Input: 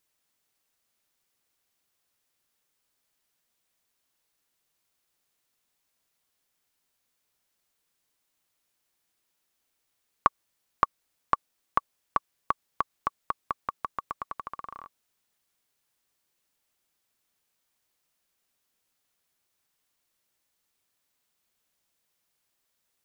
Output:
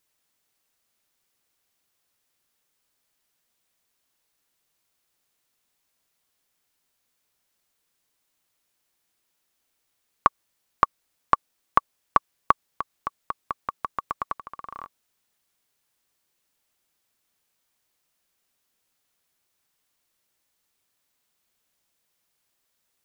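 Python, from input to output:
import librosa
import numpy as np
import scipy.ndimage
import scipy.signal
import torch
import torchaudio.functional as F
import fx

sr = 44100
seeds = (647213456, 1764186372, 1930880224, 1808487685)

y = fx.level_steps(x, sr, step_db=12)
y = y * librosa.db_to_amplitude(8.5)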